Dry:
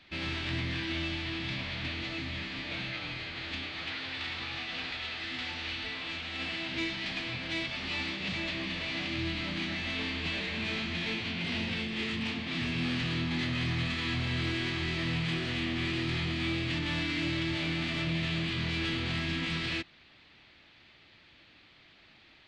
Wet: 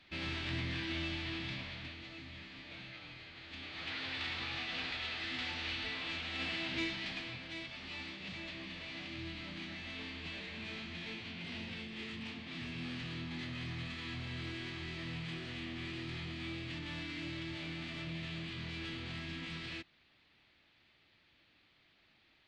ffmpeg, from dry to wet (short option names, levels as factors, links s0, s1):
-af "volume=1.88,afade=t=out:st=1.35:d=0.62:silence=0.398107,afade=t=in:st=3.49:d=0.55:silence=0.316228,afade=t=out:st=6.71:d=0.77:silence=0.398107"